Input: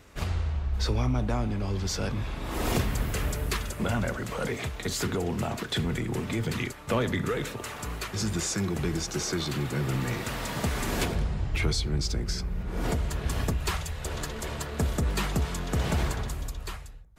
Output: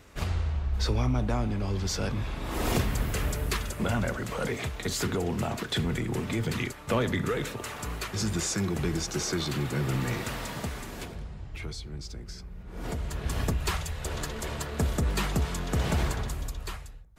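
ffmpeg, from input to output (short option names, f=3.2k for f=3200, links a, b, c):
-af "volume=11dB,afade=t=out:st=10.19:d=0.72:silence=0.281838,afade=t=in:st=12.63:d=0.85:silence=0.281838"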